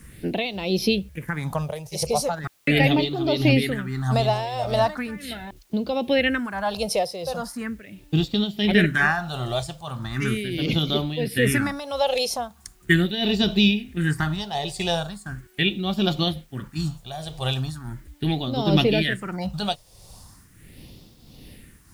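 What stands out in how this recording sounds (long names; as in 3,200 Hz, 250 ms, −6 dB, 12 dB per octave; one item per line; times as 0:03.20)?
phaser sweep stages 4, 0.39 Hz, lowest notch 260–1,700 Hz
tremolo triangle 1.5 Hz, depth 75%
a quantiser's noise floor 12 bits, dither triangular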